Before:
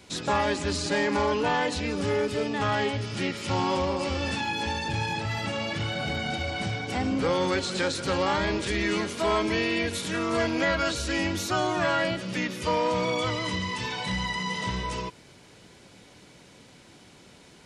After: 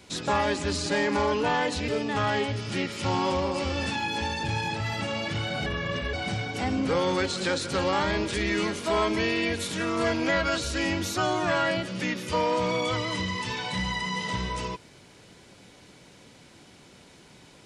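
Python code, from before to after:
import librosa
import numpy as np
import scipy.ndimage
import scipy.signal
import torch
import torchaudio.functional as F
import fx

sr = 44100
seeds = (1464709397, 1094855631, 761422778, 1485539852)

y = fx.edit(x, sr, fx.cut(start_s=1.88, length_s=0.45),
    fx.speed_span(start_s=6.11, length_s=0.36, speed=0.76), tone=tone)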